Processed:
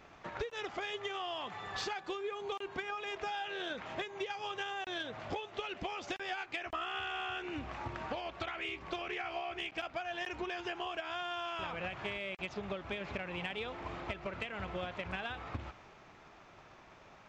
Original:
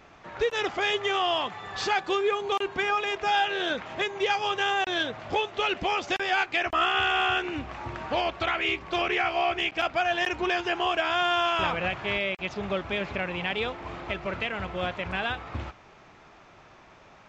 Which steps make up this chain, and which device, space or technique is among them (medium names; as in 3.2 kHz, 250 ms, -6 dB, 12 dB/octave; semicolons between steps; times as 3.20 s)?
drum-bus smash (transient shaper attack +7 dB, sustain +2 dB; compression 12:1, threshold -30 dBFS, peak gain reduction 15 dB; saturation -20 dBFS, distortion -26 dB); trim -5 dB